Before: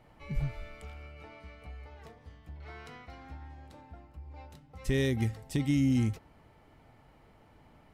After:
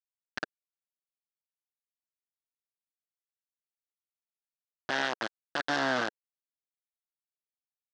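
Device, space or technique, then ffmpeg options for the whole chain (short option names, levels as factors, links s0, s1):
hand-held game console: -af "acrusher=bits=3:mix=0:aa=0.000001,highpass=420,equalizer=f=440:t=q:w=4:g=-8,equalizer=f=1600:t=q:w=4:g=10,equalizer=f=2300:t=q:w=4:g=-10,lowpass=f=5000:w=0.5412,lowpass=f=5000:w=1.3066"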